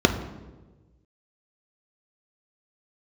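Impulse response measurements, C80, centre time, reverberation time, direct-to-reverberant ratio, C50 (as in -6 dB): 12.0 dB, 17 ms, 1.2 s, 4.5 dB, 10.0 dB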